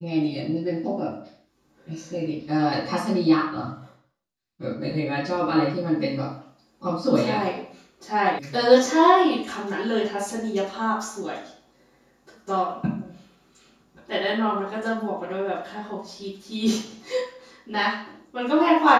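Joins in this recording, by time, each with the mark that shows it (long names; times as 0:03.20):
0:08.39: cut off before it has died away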